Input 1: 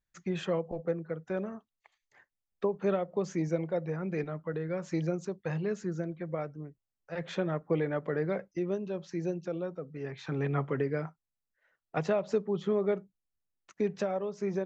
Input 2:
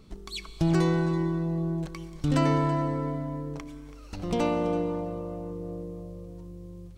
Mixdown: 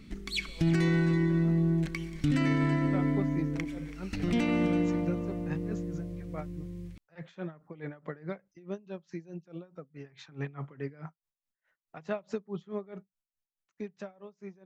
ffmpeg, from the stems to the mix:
-filter_complex "[0:a]dynaudnorm=f=390:g=9:m=2.11,aeval=exprs='val(0)*pow(10,-21*(0.5-0.5*cos(2*PI*4.7*n/s))/20)':c=same,volume=0.473[s0];[1:a]equalizer=f=250:t=o:w=1:g=9,equalizer=f=1000:t=o:w=1:g=-8,equalizer=f=2000:t=o:w=1:g=12,volume=1[s1];[s0][s1]amix=inputs=2:normalize=0,equalizer=f=470:t=o:w=1:g=-6,alimiter=limit=0.119:level=0:latency=1:release=85"

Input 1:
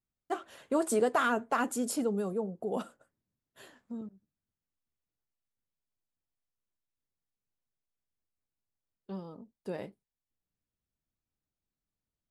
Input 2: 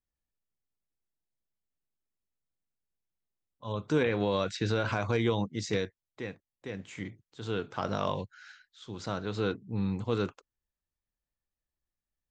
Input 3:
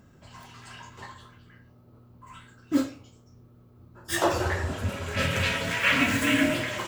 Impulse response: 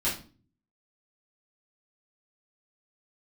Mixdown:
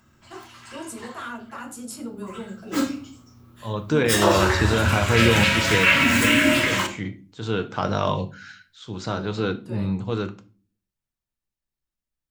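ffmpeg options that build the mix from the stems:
-filter_complex "[0:a]alimiter=limit=0.075:level=0:latency=1,volume=0.562,asplit=2[s0][s1];[s1]volume=0.266[s2];[1:a]volume=0.708,asplit=2[s3][s4];[s4]volume=0.158[s5];[2:a]volume=1.26,asplit=2[s6][s7];[s7]volume=0.141[s8];[s0][s6]amix=inputs=2:normalize=0,highpass=f=830:w=0.5412,highpass=f=830:w=1.3066,acompressor=threshold=0.0355:ratio=6,volume=1[s9];[3:a]atrim=start_sample=2205[s10];[s2][s5][s8]amix=inputs=3:normalize=0[s11];[s11][s10]afir=irnorm=-1:irlink=0[s12];[s3][s9][s12]amix=inputs=3:normalize=0,dynaudnorm=f=280:g=21:m=3.76"

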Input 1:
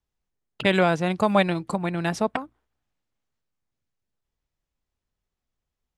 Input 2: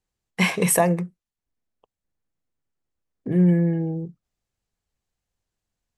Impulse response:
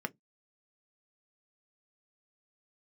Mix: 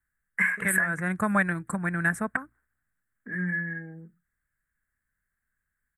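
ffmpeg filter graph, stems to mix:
-filter_complex "[0:a]volume=0.841[s0];[1:a]equalizer=f=1800:t=o:w=1.6:g=13.5,volume=0.158,asplit=3[s1][s2][s3];[s2]volume=0.708[s4];[s3]apad=whole_len=263453[s5];[s0][s5]sidechaincompress=threshold=0.0178:ratio=8:attack=35:release=147[s6];[2:a]atrim=start_sample=2205[s7];[s4][s7]afir=irnorm=-1:irlink=0[s8];[s6][s1][s8]amix=inputs=3:normalize=0,firequalizer=gain_entry='entry(190,0);entry(390,-8);entry(870,-8);entry(1600,13);entry(2800,-16);entry(4900,-22);entry(8000,7)':delay=0.05:min_phase=1,alimiter=limit=0.237:level=0:latency=1:release=378"

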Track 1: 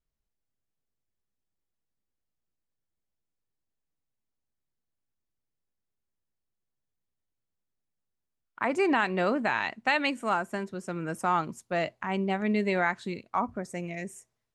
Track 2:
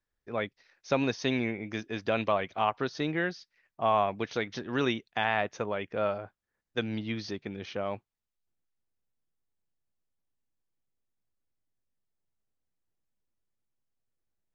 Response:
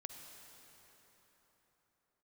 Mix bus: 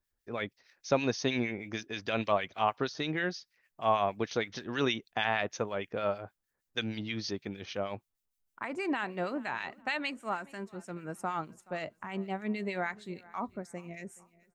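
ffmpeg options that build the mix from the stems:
-filter_complex "[0:a]volume=0.596,asplit=2[s0][s1];[s1]volume=0.0794[s2];[1:a]highshelf=f=5600:g=11,volume=1.12[s3];[s2]aecho=0:1:425|850|1275|1700|2125:1|0.35|0.122|0.0429|0.015[s4];[s0][s3][s4]amix=inputs=3:normalize=0,acrossover=split=1500[s5][s6];[s5]aeval=exprs='val(0)*(1-0.7/2+0.7/2*cos(2*PI*6.4*n/s))':c=same[s7];[s6]aeval=exprs='val(0)*(1-0.7/2-0.7/2*cos(2*PI*6.4*n/s))':c=same[s8];[s7][s8]amix=inputs=2:normalize=0"

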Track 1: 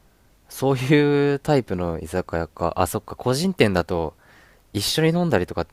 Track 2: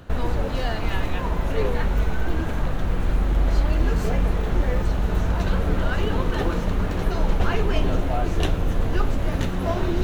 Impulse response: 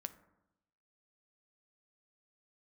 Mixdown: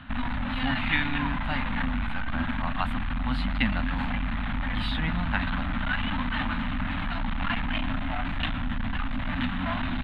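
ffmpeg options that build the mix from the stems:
-filter_complex "[0:a]acrossover=split=710[s0][s1];[s0]aeval=exprs='val(0)*(1-0.5/2+0.5/2*cos(2*PI*1.6*n/s))':c=same[s2];[s1]aeval=exprs='val(0)*(1-0.5/2-0.5/2*cos(2*PI*1.6*n/s))':c=same[s3];[s2][s3]amix=inputs=2:normalize=0,volume=0.282[s4];[1:a]asoftclip=type=tanh:threshold=0.0794,volume=0.668[s5];[s4][s5]amix=inputs=2:normalize=0,firequalizer=gain_entry='entry(170,0);entry(250,12);entry(390,-29);entry(580,-6);entry(840,5);entry(1900,11);entry(3700,8);entry(5700,-25);entry(8800,-17);entry(13000,-23)':delay=0.05:min_phase=1"

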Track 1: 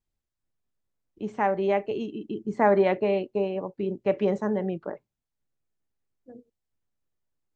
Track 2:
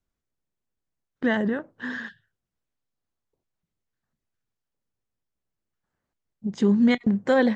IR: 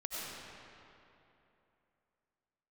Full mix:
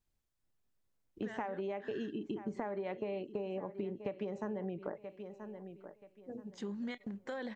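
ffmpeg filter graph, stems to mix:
-filter_complex "[0:a]acompressor=threshold=0.0501:ratio=6,volume=1.12,asplit=2[s0][s1];[s1]volume=0.126[s2];[1:a]lowshelf=f=330:g=-10.5,alimiter=limit=0.141:level=0:latency=1:release=41,volume=0.237[s3];[s2]aecho=0:1:979|1958|2937|3916:1|0.25|0.0625|0.0156[s4];[s0][s3][s4]amix=inputs=3:normalize=0,acompressor=threshold=0.0158:ratio=6"

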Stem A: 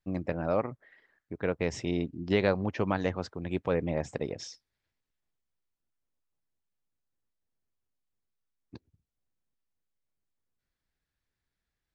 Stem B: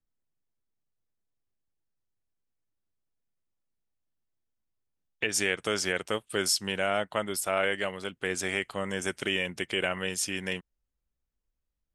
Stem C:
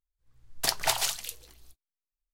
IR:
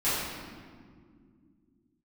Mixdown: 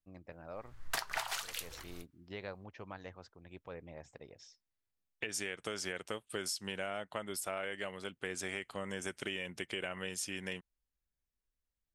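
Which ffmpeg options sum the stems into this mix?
-filter_complex "[0:a]equalizer=f=230:w=0.52:g=-7.5,volume=0.188[s0];[1:a]volume=0.473[s1];[2:a]equalizer=f=1400:t=o:w=1.9:g=12.5,adelay=300,volume=1.19[s2];[s0][s1][s2]amix=inputs=3:normalize=0,acompressor=threshold=0.02:ratio=10"

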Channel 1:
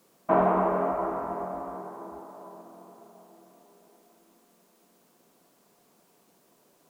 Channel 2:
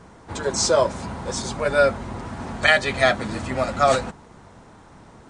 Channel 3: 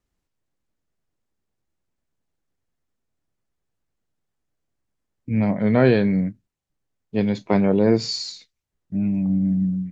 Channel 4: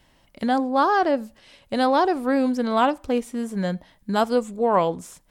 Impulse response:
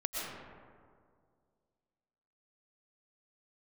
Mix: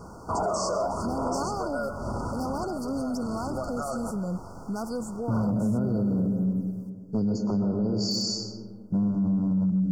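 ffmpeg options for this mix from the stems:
-filter_complex "[0:a]aphaser=in_gain=1:out_gain=1:delay=1.8:decay=0.7:speed=0.77:type=sinusoidal,volume=0.282[s0];[1:a]acompressor=threshold=0.0447:ratio=6,alimiter=limit=0.0668:level=0:latency=1:release=299,volume=0.631,asplit=2[s1][s2];[s2]volume=0.224[s3];[2:a]acompressor=threshold=0.0631:ratio=12,acrossover=split=310|3000[s4][s5][s6];[s5]acompressor=threshold=0.01:ratio=6[s7];[s4][s7][s6]amix=inputs=3:normalize=0,volume=1,asplit=2[s8][s9];[s9]volume=0.447[s10];[3:a]acrossover=split=240|3000[s11][s12][s13];[s12]acompressor=threshold=0.00891:ratio=1.5[s14];[s11][s14][s13]amix=inputs=3:normalize=0,adelay=600,volume=0.562[s15];[s1][s8][s15]amix=inputs=3:normalize=0,aeval=exprs='0.0668*(abs(mod(val(0)/0.0668+3,4)-2)-1)':c=same,alimiter=level_in=2:limit=0.0631:level=0:latency=1:release=12,volume=0.501,volume=1[s16];[4:a]atrim=start_sample=2205[s17];[s3][s10]amix=inputs=2:normalize=0[s18];[s18][s17]afir=irnorm=-1:irlink=0[s19];[s0][s16][s19]amix=inputs=3:normalize=0,afftfilt=real='re*(1-between(b*sr/4096,1500,4400))':imag='im*(1-between(b*sr/4096,1500,4400))':win_size=4096:overlap=0.75,acontrast=43,alimiter=limit=0.106:level=0:latency=1:release=10"

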